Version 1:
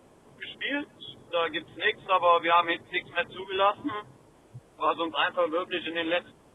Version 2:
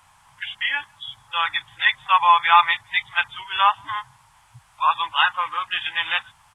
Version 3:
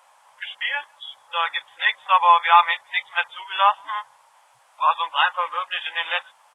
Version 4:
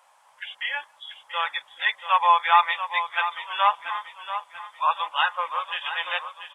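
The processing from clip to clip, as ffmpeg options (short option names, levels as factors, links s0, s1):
-af "firequalizer=gain_entry='entry(100,0);entry(280,-26);entry(460,-27);entry(850,7)':delay=0.05:min_phase=1,volume=1.19"
-af "highpass=f=540:t=q:w=4.9,volume=0.75"
-af "aecho=1:1:686|1372|2058|2744:0.299|0.125|0.0527|0.0221,volume=0.668"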